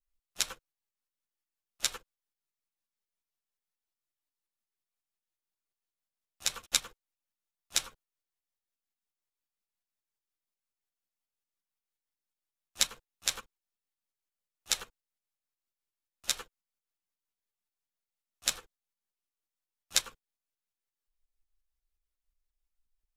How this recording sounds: tremolo saw up 5.6 Hz, depth 55%; a shimmering, thickened sound

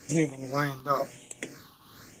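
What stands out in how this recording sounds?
tremolo triangle 2.1 Hz, depth 75%; phasing stages 6, 0.97 Hz, lowest notch 570–1300 Hz; Opus

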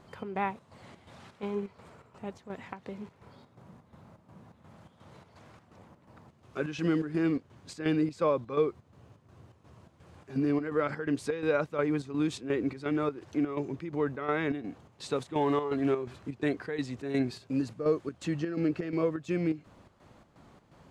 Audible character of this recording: chopped level 2.8 Hz, depth 60%, duty 65%

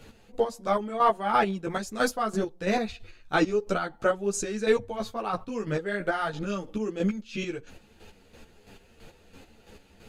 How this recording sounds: chopped level 3 Hz, depth 60%, duty 30%; a shimmering, thickened sound

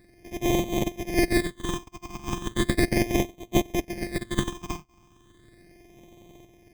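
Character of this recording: a buzz of ramps at a fixed pitch in blocks of 128 samples; tremolo saw up 0.62 Hz, depth 50%; aliases and images of a low sample rate 1.4 kHz, jitter 0%; phasing stages 8, 0.36 Hz, lowest notch 540–1500 Hz

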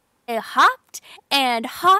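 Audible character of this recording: noise floor -68 dBFS; spectral tilt -1.0 dB/octave

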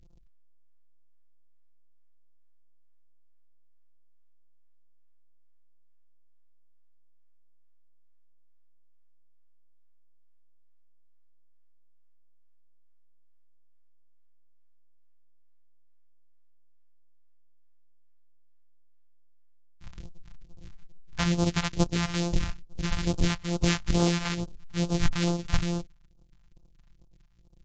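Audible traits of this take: a buzz of ramps at a fixed pitch in blocks of 256 samples; phasing stages 2, 2.3 Hz, lowest notch 370–1900 Hz; AAC

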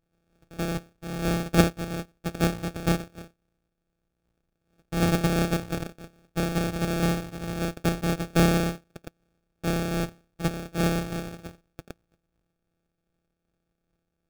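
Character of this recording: a buzz of ramps at a fixed pitch in blocks of 256 samples; tremolo triangle 2.6 Hz, depth 40%; aliases and images of a low sample rate 1 kHz, jitter 0%

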